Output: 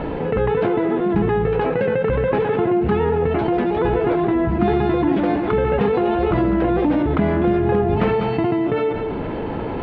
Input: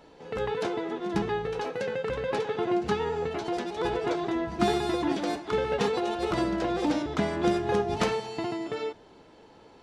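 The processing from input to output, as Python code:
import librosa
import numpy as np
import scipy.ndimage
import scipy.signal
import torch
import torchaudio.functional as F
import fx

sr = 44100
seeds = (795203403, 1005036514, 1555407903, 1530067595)

y = scipy.signal.sosfilt(scipy.signal.butter(4, 2700.0, 'lowpass', fs=sr, output='sos'), x)
y = fx.low_shelf(y, sr, hz=310.0, db=10.5)
y = y + 10.0 ** (-17.0 / 20.0) * np.pad(y, (int(197 * sr / 1000.0), 0))[:len(y)]
y = fx.env_flatten(y, sr, amount_pct=70)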